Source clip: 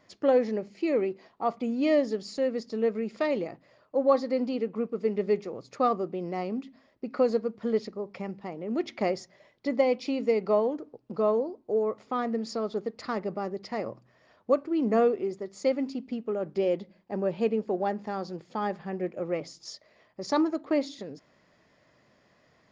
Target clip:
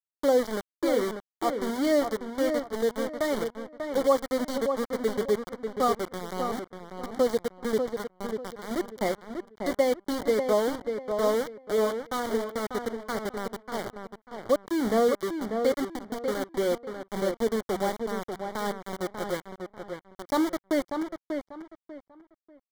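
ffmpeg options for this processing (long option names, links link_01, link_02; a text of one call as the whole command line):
ffmpeg -i in.wav -filter_complex "[0:a]aeval=exprs='val(0)*gte(abs(val(0)),0.0376)':channel_layout=same,asuperstop=centerf=2600:order=8:qfactor=3.8,asplit=2[link_01][link_02];[link_02]adelay=592,lowpass=frequency=2500:poles=1,volume=-6dB,asplit=2[link_03][link_04];[link_04]adelay=592,lowpass=frequency=2500:poles=1,volume=0.27,asplit=2[link_05][link_06];[link_06]adelay=592,lowpass=frequency=2500:poles=1,volume=0.27[link_07];[link_03][link_05][link_07]amix=inputs=3:normalize=0[link_08];[link_01][link_08]amix=inputs=2:normalize=0" out.wav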